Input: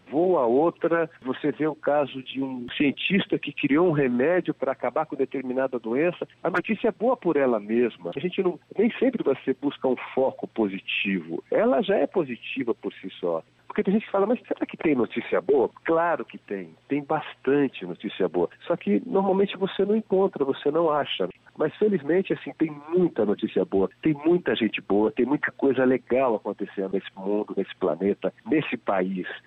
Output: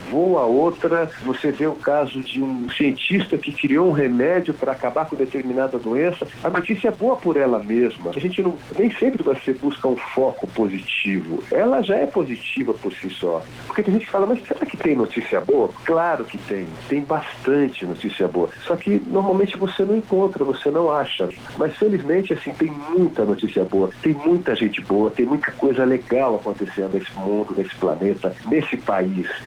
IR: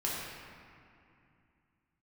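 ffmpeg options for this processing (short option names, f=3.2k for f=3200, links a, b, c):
-filter_complex "[0:a]aeval=exprs='val(0)+0.5*0.0119*sgn(val(0))':c=same,highshelf=f=3k:g=3,aecho=1:1:38|49:0.168|0.133,acrossover=split=180|1600[a][b][c];[a]acrusher=bits=3:mode=log:mix=0:aa=0.000001[d];[d][b][c]amix=inputs=3:normalize=0,aemphasis=mode=reproduction:type=50fm,asplit=2[e][f];[f]acompressor=threshold=-34dB:ratio=12,volume=2.5dB[g];[e][g]amix=inputs=2:normalize=0,volume=1.5dB" -ar 48000 -c:a libopus -b:a 32k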